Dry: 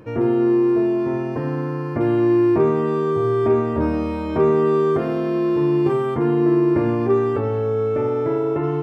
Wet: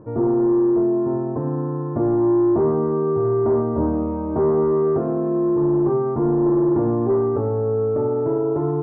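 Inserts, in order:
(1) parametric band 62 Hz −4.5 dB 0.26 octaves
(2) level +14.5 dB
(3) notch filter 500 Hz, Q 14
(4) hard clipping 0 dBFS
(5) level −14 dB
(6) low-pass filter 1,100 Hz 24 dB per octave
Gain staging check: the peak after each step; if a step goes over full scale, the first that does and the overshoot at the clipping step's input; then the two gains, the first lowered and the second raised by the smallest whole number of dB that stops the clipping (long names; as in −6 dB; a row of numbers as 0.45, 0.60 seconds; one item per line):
−6.0, +8.5, +8.5, 0.0, −14.0, −12.5 dBFS
step 2, 8.5 dB
step 2 +5.5 dB, step 5 −5 dB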